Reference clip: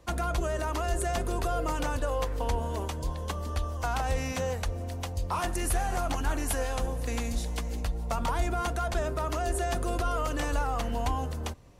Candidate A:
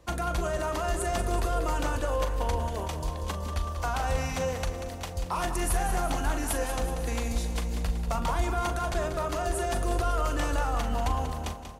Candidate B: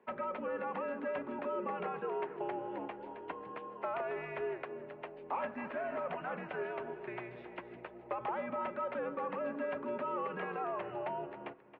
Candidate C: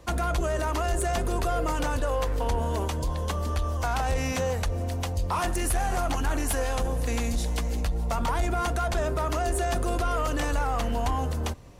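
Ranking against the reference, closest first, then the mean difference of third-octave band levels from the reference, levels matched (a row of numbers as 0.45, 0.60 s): C, A, B; 1.0, 2.5, 13.0 dB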